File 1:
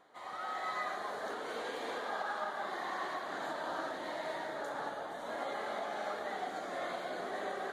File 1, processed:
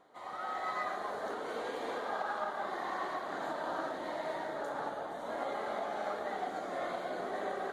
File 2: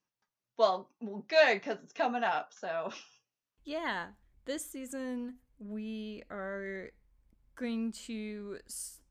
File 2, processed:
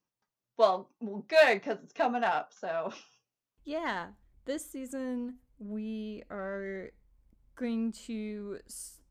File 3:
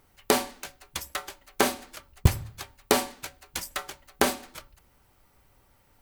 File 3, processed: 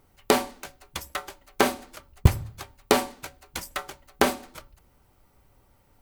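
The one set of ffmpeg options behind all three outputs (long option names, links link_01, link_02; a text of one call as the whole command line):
ffmpeg -i in.wav -filter_complex "[0:a]bandreject=frequency=1700:width=29,asplit=2[link_01][link_02];[link_02]adynamicsmooth=sensitivity=4:basefreq=1400,volume=-3dB[link_03];[link_01][link_03]amix=inputs=2:normalize=0,volume=-2dB" out.wav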